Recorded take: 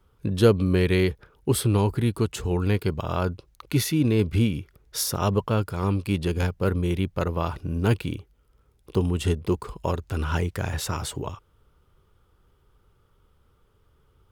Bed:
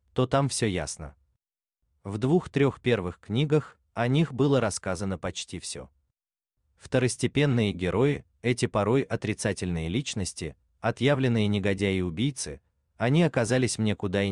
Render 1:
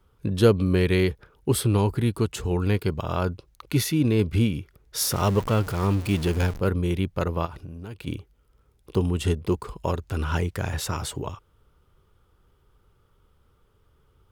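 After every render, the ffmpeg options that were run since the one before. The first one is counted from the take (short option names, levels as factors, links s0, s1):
-filter_complex "[0:a]asettb=1/sr,asplit=3[s0][s1][s2];[s0]atrim=end=5.014[s3];[s1]atrim=start=5.01:end=6.6,asetpts=PTS-STARTPTS,afade=t=in:d=0.004:c=qsin,afade=t=out:st=1.586:d=0.004:c=qsin,aeval=exprs='val(0)+0.5*0.0299*sgn(val(0))':c=same[s4];[s2]atrim=start=6.596[s5];[s3][s4]acrossfade=d=0.004:c1=hsin:c2=qsin[s6];[s6][s5]acrossfade=d=0.004:c1=qsin:c2=hsin,asplit=3[s7][s8][s9];[s7]afade=t=out:st=7.45:d=0.02[s10];[s8]acompressor=threshold=0.02:ratio=10:attack=3.2:release=140:knee=1:detection=peak,afade=t=in:st=7.45:d=0.02,afade=t=out:st=8.06:d=0.02[s11];[s9]afade=t=in:st=8.06:d=0.02[s12];[s10][s11][s12]amix=inputs=3:normalize=0"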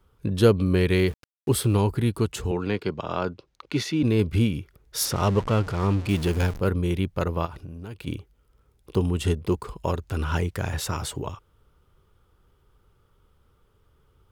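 -filter_complex "[0:a]asettb=1/sr,asplit=3[s0][s1][s2];[s0]atrim=end=0.904[s3];[s1]atrim=start=0.9:end=1.78,asetpts=PTS-STARTPTS,afade=t=in:d=0.004:c=qsin,afade=t=out:st=0.876:d=0.004:c=qsin,aeval=exprs='val(0)*gte(abs(val(0)),0.00891)':c=same[s4];[s2]atrim=start=1.776[s5];[s3][s4]acrossfade=d=0.004:c1=hsin:c2=qsin[s6];[s6][s5]acrossfade=d=0.004:c1=qsin:c2=hsin,asettb=1/sr,asplit=3[s7][s8][s9];[s7]atrim=end=2.514[s10];[s8]atrim=start=2.51:end=4.03,asetpts=PTS-STARTPTS,afade=t=in:d=0.004:c=qsin,afade=t=out:st=1.516:d=0.004:c=qsin,acrossover=split=160 6700:gain=0.224 1 0.0794[s11][s12][s13];[s11][s12][s13]amix=inputs=3:normalize=0[s14];[s9]atrim=start=4.026[s15];[s10][s14]acrossfade=d=0.004:c1=hsin:c2=qsin[s16];[s16][s15]acrossfade=d=0.004:c1=qsin:c2=hsin,asettb=1/sr,asplit=3[s17][s18][s19];[s17]atrim=end=5.054[s20];[s18]atrim=start=5.05:end=6.09,asetpts=PTS-STARTPTS,afade=t=in:d=0.004:c=qsin,afade=t=out:st=1.036:d=0.004:c=qsin,adynamicsmooth=sensitivity=3.5:basefreq=5600[s21];[s19]atrim=start=6.086[s22];[s20][s21]acrossfade=d=0.004:c1=hsin:c2=qsin[s23];[s23][s22]acrossfade=d=0.004:c1=qsin:c2=hsin"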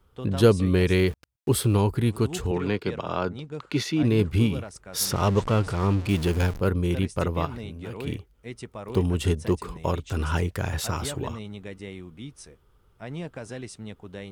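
-filter_complex "[1:a]volume=0.224[s0];[0:a][s0]amix=inputs=2:normalize=0"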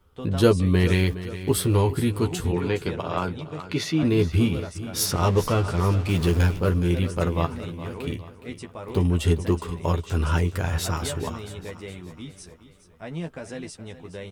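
-filter_complex "[0:a]asplit=2[s0][s1];[s1]adelay=12,volume=0.562[s2];[s0][s2]amix=inputs=2:normalize=0,aecho=1:1:416|832|1248|1664:0.2|0.0898|0.0404|0.0182"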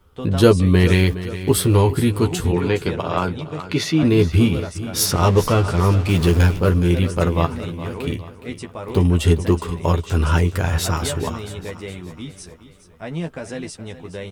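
-af "volume=1.88,alimiter=limit=0.891:level=0:latency=1"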